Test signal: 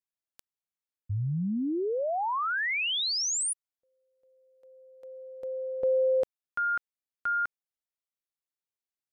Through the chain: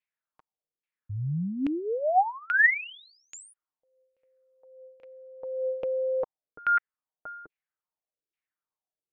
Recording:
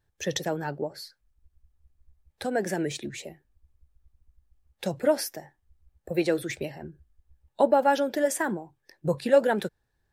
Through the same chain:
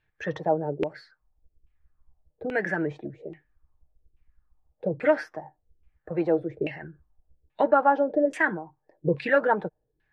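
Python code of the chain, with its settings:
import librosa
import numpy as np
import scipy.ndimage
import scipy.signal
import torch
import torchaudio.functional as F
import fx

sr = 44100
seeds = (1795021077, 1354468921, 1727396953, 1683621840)

y = fx.high_shelf(x, sr, hz=2100.0, db=7.5)
y = y + 0.42 * np.pad(y, (int(6.5 * sr / 1000.0), 0))[:len(y)]
y = fx.filter_lfo_lowpass(y, sr, shape='saw_down', hz=1.2, low_hz=360.0, high_hz=2600.0, q=3.6)
y = y * 10.0 ** (-2.5 / 20.0)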